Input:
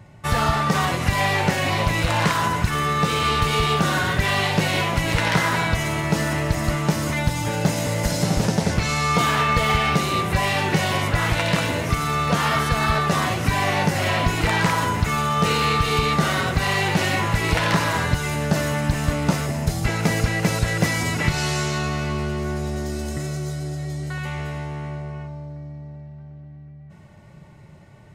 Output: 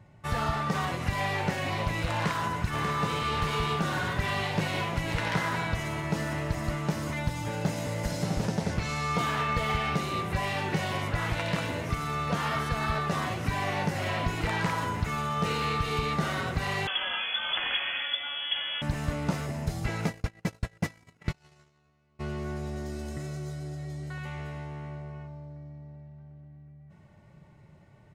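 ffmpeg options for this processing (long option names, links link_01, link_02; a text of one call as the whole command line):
ffmpeg -i in.wav -filter_complex "[0:a]asplit=2[link_01][link_02];[link_02]afade=type=in:start_time=2.14:duration=0.01,afade=type=out:start_time=2.64:duration=0.01,aecho=0:1:590|1180|1770|2360|2950|3540|4130|4720|5310|5900|6490|7080:0.530884|0.398163|0.298622|0.223967|0.167975|0.125981|0.094486|0.0708645|0.0531484|0.0398613|0.029896|0.022422[link_03];[link_01][link_03]amix=inputs=2:normalize=0,asettb=1/sr,asplit=3[link_04][link_05][link_06];[link_04]atrim=end=16.874[link_07];[link_05]atrim=start=16.87:end=18.82,asetpts=PTS-STARTPTS,afade=type=in:duration=0.004:curve=qsin,afade=type=out:start_time=1.946:duration=0.004:curve=qsin,lowpass=frequency=3000:width_type=q:width=0.5098,lowpass=frequency=3000:width_type=q:width=0.6013,lowpass=frequency=3000:width_type=q:width=0.9,lowpass=frequency=3000:width_type=q:width=2.563,afreqshift=-3500[link_08];[link_06]atrim=start=18.816[link_09];[link_07][link_08]acrossfade=duration=0.004:curve1=hsin:curve2=qsin[link_10];[link_10][link_09]acrossfade=duration=0.004:curve1=qsin:curve2=hsin,asplit=3[link_11][link_12][link_13];[link_11]afade=type=out:start_time=20.06:duration=0.02[link_14];[link_12]agate=range=-36dB:threshold=-20dB:ratio=16:release=100:detection=peak,afade=type=in:start_time=20.06:duration=0.02,afade=type=out:start_time=22.19:duration=0.02[link_15];[link_13]afade=type=in:start_time=22.19:duration=0.02[link_16];[link_14][link_15][link_16]amix=inputs=3:normalize=0,highshelf=frequency=4300:gain=-5.5,volume=-8.5dB" out.wav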